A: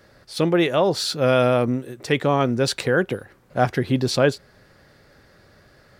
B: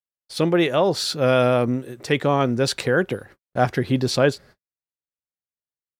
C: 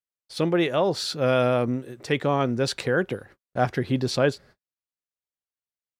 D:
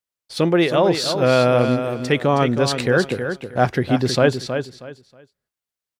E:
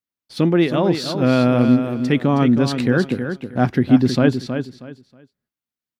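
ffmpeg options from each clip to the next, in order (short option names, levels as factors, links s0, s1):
-af "agate=range=0.00158:threshold=0.00631:ratio=16:detection=peak"
-af "highshelf=f=10000:g=-6,volume=0.668"
-af "aecho=1:1:318|636|954:0.398|0.0955|0.0229,volume=1.88"
-af "equalizer=f=125:t=o:w=1:g=3,equalizer=f=250:t=o:w=1:g=11,equalizer=f=500:t=o:w=1:g=-4,equalizer=f=8000:t=o:w=1:g=-5,volume=0.708"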